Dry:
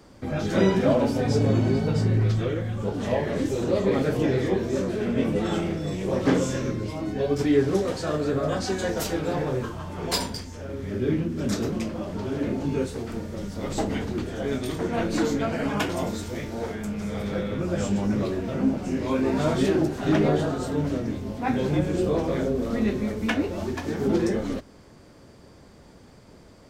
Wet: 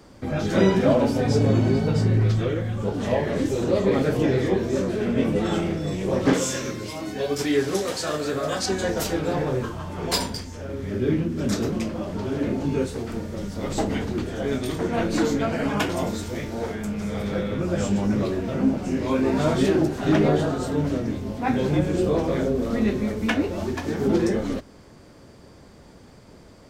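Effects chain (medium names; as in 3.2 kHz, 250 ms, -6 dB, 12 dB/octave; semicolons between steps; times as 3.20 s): 6.33–8.66 s: tilt EQ +2.5 dB/octave; trim +2 dB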